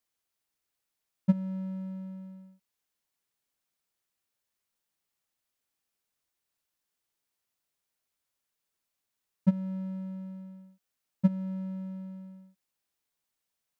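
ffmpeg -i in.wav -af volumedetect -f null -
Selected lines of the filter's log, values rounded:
mean_volume: -38.3 dB
max_volume: -11.1 dB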